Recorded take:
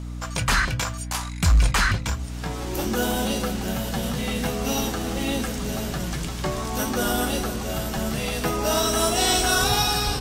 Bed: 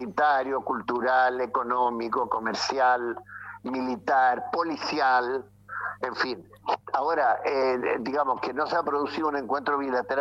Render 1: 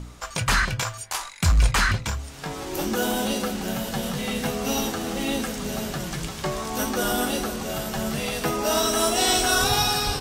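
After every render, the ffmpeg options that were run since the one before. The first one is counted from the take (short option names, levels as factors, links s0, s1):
-af "bandreject=f=60:t=h:w=4,bandreject=f=120:t=h:w=4,bandreject=f=180:t=h:w=4,bandreject=f=240:t=h:w=4,bandreject=f=300:t=h:w=4"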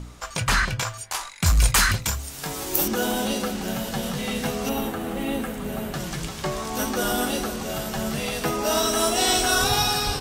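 -filter_complex "[0:a]asettb=1/sr,asplit=3[s0][s1][s2];[s0]atrim=end=1.464[s3];[s1]atrim=start=1.46:end=2.88,asetpts=PTS-STARTPTS,afade=t=in:d=0.004:c=qsin,afade=t=out:st=1.416:d=0.004:c=qsin,aemphasis=mode=production:type=50fm[s4];[s2]atrim=start=2.876[s5];[s3][s4]acrossfade=d=0.004:c1=hsin:c2=qsin[s6];[s6][s5]acrossfade=d=0.004:c1=qsin:c2=hsin,asettb=1/sr,asplit=3[s7][s8][s9];[s7]atrim=end=4.694[s10];[s8]atrim=start=4.69:end=5.94,asetpts=PTS-STARTPTS,afade=t=in:d=0.004:c=qsin,afade=t=out:st=1.246:d=0.004:c=qsin,equalizer=f=5500:t=o:w=1.2:g=-14[s11];[s9]atrim=start=5.936[s12];[s10][s11]acrossfade=d=0.004:c1=hsin:c2=qsin[s13];[s13][s12]acrossfade=d=0.004:c1=qsin:c2=hsin"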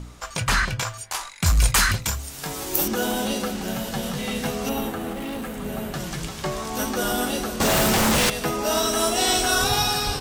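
-filter_complex "[0:a]asettb=1/sr,asplit=3[s0][s1][s2];[s0]atrim=end=5.134[s3];[s1]atrim=start=5.13:end=5.55,asetpts=PTS-STARTPTS,afade=t=in:d=0.004:c=qsin,afade=t=out:st=0.416:d=0.004:c=qsin,asoftclip=type=hard:threshold=0.0398[s4];[s2]atrim=start=5.546[s5];[s3][s4]acrossfade=d=0.004:c1=hsin:c2=qsin[s6];[s6][s5]acrossfade=d=0.004:c1=qsin:c2=hsin,asettb=1/sr,asplit=3[s7][s8][s9];[s7]atrim=end=7.604[s10];[s8]atrim=start=7.6:end=8.3,asetpts=PTS-STARTPTS,afade=t=in:d=0.004:c=qsin,afade=t=out:st=0.696:d=0.004:c=qsin,aeval=exprs='0.158*sin(PI/2*3.98*val(0)/0.158)':c=same[s11];[s9]atrim=start=8.296[s12];[s10][s11]acrossfade=d=0.004:c1=hsin:c2=qsin[s13];[s13][s12]acrossfade=d=0.004:c1=qsin:c2=hsin"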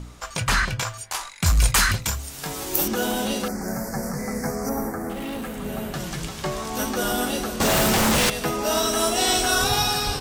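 -filter_complex "[0:a]asettb=1/sr,asplit=3[s0][s1][s2];[s0]atrim=end=3.484[s3];[s1]atrim=start=3.48:end=5.1,asetpts=PTS-STARTPTS,afade=t=in:d=0.004:c=qsin,afade=t=out:st=1.616:d=0.004:c=qsin,asuperstop=centerf=3200:order=8:qfactor=1.2[s4];[s2]atrim=start=5.096[s5];[s3][s4]acrossfade=d=0.004:c1=hsin:c2=qsin[s6];[s6][s5]acrossfade=d=0.004:c1=qsin:c2=hsin"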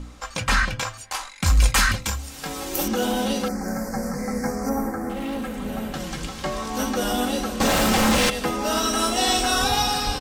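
-af "highshelf=f=9200:g=-8.5,aecho=1:1:3.8:0.49"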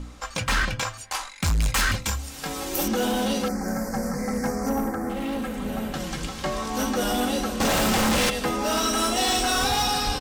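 -af "volume=8.91,asoftclip=hard,volume=0.112"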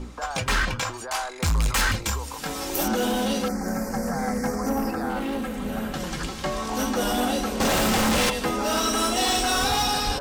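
-filter_complex "[1:a]volume=0.266[s0];[0:a][s0]amix=inputs=2:normalize=0"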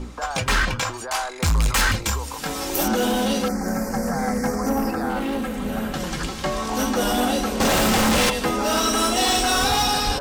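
-af "volume=1.41"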